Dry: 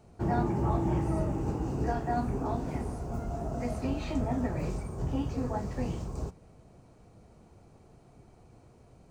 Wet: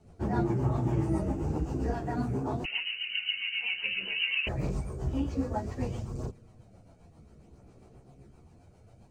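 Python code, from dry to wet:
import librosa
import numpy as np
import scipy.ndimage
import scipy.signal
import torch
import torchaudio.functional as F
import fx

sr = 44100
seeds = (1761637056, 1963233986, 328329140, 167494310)

y = fx.freq_invert(x, sr, carrier_hz=2900, at=(2.64, 4.47))
y = fx.rotary(y, sr, hz=7.5)
y = fx.chorus_voices(y, sr, voices=2, hz=0.32, base_ms=12, depth_ms=3.9, mix_pct=55)
y = F.gain(torch.from_numpy(y), 4.5).numpy()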